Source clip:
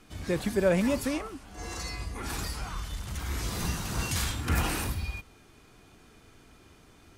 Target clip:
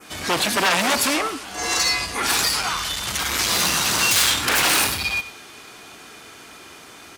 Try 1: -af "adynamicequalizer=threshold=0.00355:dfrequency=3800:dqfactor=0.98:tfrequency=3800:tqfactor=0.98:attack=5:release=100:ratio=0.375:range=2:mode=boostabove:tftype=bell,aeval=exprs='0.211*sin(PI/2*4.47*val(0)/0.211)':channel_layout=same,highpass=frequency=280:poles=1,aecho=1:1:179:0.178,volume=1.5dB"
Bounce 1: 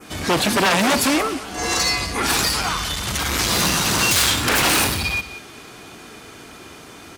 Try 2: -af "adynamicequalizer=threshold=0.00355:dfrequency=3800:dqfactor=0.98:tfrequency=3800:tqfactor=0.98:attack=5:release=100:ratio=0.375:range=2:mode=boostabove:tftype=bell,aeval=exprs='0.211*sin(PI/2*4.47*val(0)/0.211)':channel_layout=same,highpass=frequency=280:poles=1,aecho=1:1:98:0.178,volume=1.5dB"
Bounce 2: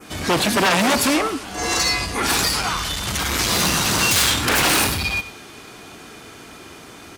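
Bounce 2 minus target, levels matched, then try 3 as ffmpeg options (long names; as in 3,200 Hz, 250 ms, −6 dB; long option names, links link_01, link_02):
250 Hz band +6.0 dB
-af "adynamicequalizer=threshold=0.00355:dfrequency=3800:dqfactor=0.98:tfrequency=3800:tqfactor=0.98:attack=5:release=100:ratio=0.375:range=2:mode=boostabove:tftype=bell,aeval=exprs='0.211*sin(PI/2*4.47*val(0)/0.211)':channel_layout=same,highpass=frequency=790:poles=1,aecho=1:1:98:0.178,volume=1.5dB"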